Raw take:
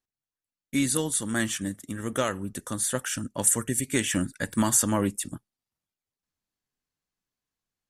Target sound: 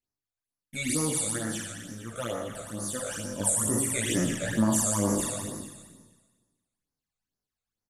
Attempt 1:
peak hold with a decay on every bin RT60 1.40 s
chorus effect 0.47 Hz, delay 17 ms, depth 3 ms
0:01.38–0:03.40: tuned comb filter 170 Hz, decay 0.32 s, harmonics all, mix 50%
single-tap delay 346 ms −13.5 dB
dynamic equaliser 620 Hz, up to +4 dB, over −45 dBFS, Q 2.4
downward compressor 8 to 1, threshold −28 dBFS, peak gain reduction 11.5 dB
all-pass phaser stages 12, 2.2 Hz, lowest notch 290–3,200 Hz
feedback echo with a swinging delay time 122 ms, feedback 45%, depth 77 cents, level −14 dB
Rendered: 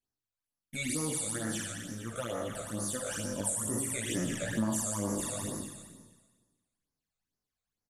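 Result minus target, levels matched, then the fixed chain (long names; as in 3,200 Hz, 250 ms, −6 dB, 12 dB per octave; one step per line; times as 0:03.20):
downward compressor: peak gain reduction +7.5 dB
peak hold with a decay on every bin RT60 1.40 s
chorus effect 0.47 Hz, delay 17 ms, depth 3 ms
0:01.38–0:03.40: tuned comb filter 170 Hz, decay 0.32 s, harmonics all, mix 50%
single-tap delay 346 ms −13.5 dB
dynamic equaliser 620 Hz, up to +4 dB, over −45 dBFS, Q 2.4
downward compressor 8 to 1, threshold −19.5 dBFS, peak gain reduction 4 dB
all-pass phaser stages 12, 2.2 Hz, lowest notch 290–3,200 Hz
feedback echo with a swinging delay time 122 ms, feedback 45%, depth 77 cents, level −14 dB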